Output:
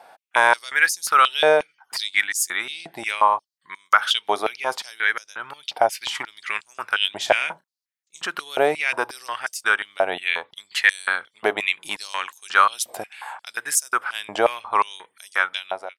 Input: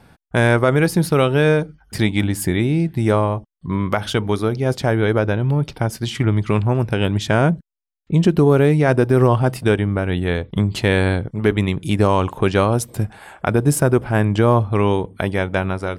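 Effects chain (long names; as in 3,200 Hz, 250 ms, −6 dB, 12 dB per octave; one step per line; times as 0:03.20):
fade-out on the ending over 0.51 s
0:07.22–0:08.23: double-tracking delay 32 ms −11 dB
high-pass on a step sequencer 5.6 Hz 700–6,200 Hz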